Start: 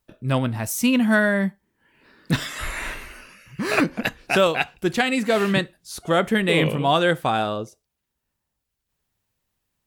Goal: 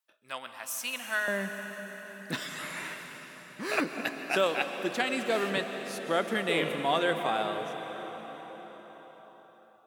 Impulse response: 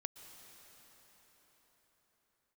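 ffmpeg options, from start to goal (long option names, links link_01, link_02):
-filter_complex "[0:a]asetnsamples=nb_out_samples=441:pad=0,asendcmd='1.28 highpass f 280',highpass=1000[link_01];[1:a]atrim=start_sample=2205,asetrate=41013,aresample=44100[link_02];[link_01][link_02]afir=irnorm=-1:irlink=0,volume=-4.5dB"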